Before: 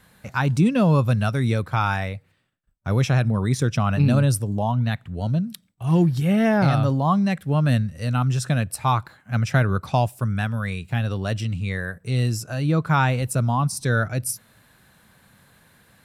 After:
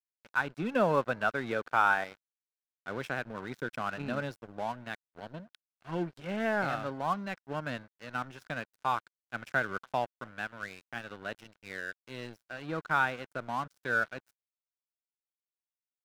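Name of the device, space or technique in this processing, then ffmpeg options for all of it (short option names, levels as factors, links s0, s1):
pocket radio on a weak battery: -filter_complex "[0:a]asettb=1/sr,asplit=3[s0][s1][s2];[s0]atrim=end=0.744[s3];[s1]atrim=start=0.74:end=2.04,asetpts=PTS-STARTPTS,afade=t=in:d=0.004:c=qsin,afade=t=out:st=1.296:d=0.004:c=qsin,equalizer=f=700:t=o:w=2.7:g=6[s4];[s2]atrim=start=2.036[s5];[s3][s4]acrossfade=d=0.004:c1=hsin:c2=qsin[s6];[s6][s5]acrossfade=d=0.004:c1=qsin:c2=hsin,highpass=320,lowpass=3400,asplit=2[s7][s8];[s8]adelay=268.2,volume=0.0355,highshelf=f=4000:g=-6.04[s9];[s7][s9]amix=inputs=2:normalize=0,aeval=exprs='sgn(val(0))*max(abs(val(0))-0.015,0)':c=same,equalizer=f=1500:t=o:w=0.23:g=8,volume=0.422"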